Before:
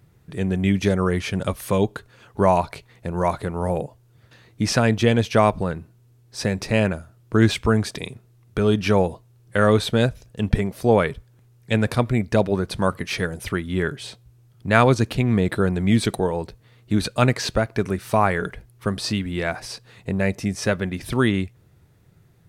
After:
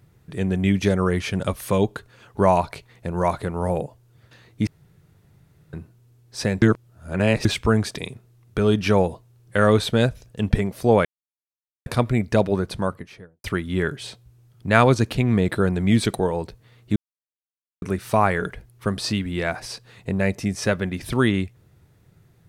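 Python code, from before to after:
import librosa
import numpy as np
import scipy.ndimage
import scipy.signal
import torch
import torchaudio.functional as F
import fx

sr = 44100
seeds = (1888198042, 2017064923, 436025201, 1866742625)

y = fx.studio_fade_out(x, sr, start_s=12.52, length_s=0.92)
y = fx.edit(y, sr, fx.room_tone_fill(start_s=4.67, length_s=1.06),
    fx.reverse_span(start_s=6.62, length_s=0.83),
    fx.silence(start_s=11.05, length_s=0.81),
    fx.silence(start_s=16.96, length_s=0.86), tone=tone)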